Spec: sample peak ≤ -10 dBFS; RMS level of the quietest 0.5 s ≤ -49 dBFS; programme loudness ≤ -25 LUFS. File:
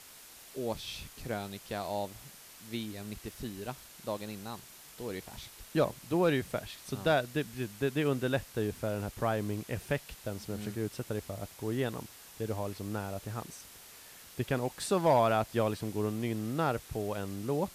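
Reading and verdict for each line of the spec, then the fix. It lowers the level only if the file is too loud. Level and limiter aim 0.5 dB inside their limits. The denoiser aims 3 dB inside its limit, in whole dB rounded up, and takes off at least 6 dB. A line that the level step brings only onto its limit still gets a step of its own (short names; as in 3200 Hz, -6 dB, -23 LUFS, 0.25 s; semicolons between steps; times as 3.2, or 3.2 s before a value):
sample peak -16.5 dBFS: OK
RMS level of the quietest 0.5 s -53 dBFS: OK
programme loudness -34.5 LUFS: OK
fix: none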